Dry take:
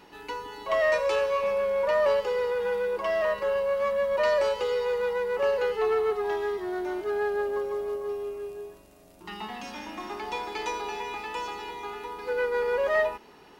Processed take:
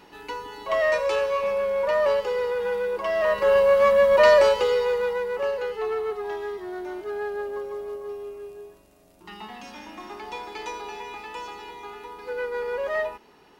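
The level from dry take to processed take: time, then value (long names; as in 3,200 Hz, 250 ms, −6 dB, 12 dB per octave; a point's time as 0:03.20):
0:03.13 +1.5 dB
0:03.55 +9 dB
0:04.31 +9 dB
0:05.61 −2.5 dB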